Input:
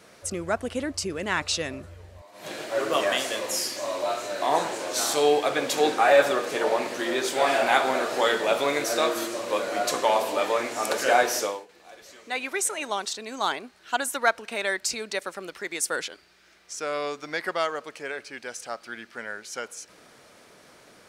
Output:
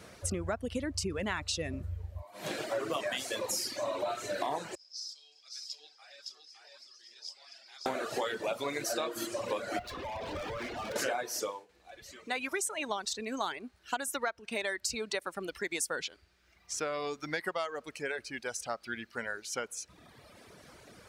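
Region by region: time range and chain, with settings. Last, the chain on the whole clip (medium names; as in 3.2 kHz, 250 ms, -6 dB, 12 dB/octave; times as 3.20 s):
4.75–7.86 s: band-pass filter 5.1 kHz, Q 17 + delay 564 ms -3 dB
9.79–10.96 s: low-pass 4.1 kHz 24 dB/octave + compression 10:1, threshold -25 dBFS + overload inside the chain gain 35 dB
whole clip: reverb removal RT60 1.3 s; peaking EQ 68 Hz +13 dB 2.1 oct; compression 12:1, threshold -30 dBFS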